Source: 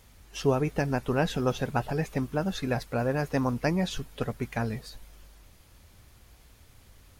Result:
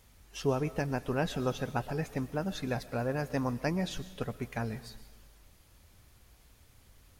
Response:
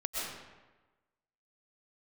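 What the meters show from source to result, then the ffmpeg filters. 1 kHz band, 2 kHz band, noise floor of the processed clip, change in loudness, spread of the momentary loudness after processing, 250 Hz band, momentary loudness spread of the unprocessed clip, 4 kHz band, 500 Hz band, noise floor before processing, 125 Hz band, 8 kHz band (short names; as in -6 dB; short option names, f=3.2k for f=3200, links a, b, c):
-5.0 dB, -4.5 dB, -61 dBFS, -4.5 dB, 7 LU, -5.0 dB, 7 LU, -4.5 dB, -4.5 dB, -57 dBFS, -5.0 dB, -4.0 dB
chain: -filter_complex "[0:a]asplit=2[a][b];[1:a]atrim=start_sample=2205,highshelf=f=4.2k:g=12[c];[b][c]afir=irnorm=-1:irlink=0,volume=-20.5dB[d];[a][d]amix=inputs=2:normalize=0,volume=-5.5dB"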